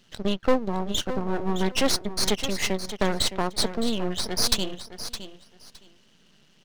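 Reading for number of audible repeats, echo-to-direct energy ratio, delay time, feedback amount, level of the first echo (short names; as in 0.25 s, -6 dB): 2, -11.5 dB, 0.614 s, 18%, -11.5 dB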